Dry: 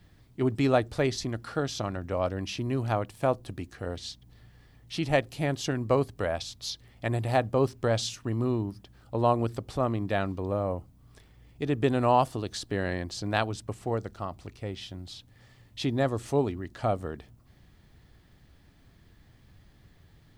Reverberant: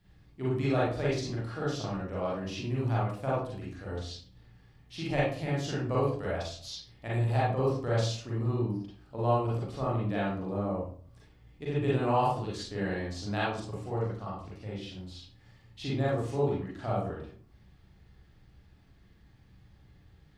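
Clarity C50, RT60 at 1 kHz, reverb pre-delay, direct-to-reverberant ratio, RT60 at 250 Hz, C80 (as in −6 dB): 0.5 dB, 0.45 s, 36 ms, −7.5 dB, 0.55 s, 6.0 dB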